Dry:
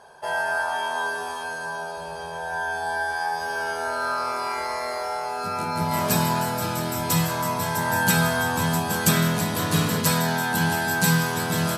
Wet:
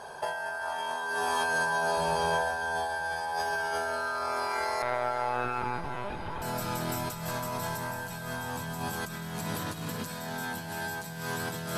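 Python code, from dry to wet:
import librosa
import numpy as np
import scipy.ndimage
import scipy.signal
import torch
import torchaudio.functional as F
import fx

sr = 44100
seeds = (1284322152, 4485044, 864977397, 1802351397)

p1 = fx.lpc_vocoder(x, sr, seeds[0], excitation='pitch_kept', order=16, at=(4.82, 6.42))
p2 = fx.over_compress(p1, sr, threshold_db=-33.0, ratio=-1.0)
p3 = p2 + fx.echo_diffused(p2, sr, ms=462, feedback_pct=73, wet_db=-12.5, dry=0)
y = F.gain(torch.from_numpy(p3), -1.0).numpy()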